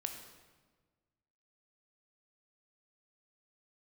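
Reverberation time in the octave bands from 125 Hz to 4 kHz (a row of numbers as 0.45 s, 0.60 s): 1.9 s, 1.7 s, 1.5 s, 1.3 s, 1.2 s, 1.0 s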